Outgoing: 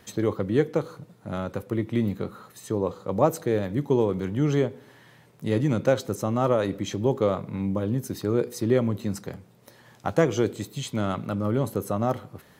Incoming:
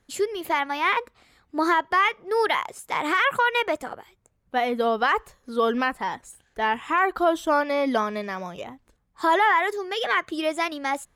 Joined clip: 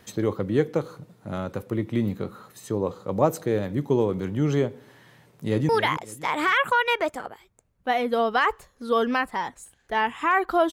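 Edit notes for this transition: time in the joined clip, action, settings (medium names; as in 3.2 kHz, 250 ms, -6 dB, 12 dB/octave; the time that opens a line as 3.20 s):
outgoing
5.25–5.69 s: echo throw 280 ms, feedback 30%, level -10.5 dB
5.69 s: go over to incoming from 2.36 s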